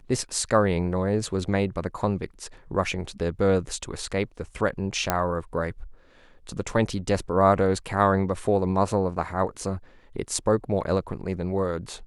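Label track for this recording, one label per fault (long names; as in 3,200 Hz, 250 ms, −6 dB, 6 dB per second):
5.100000	5.100000	click −6 dBFS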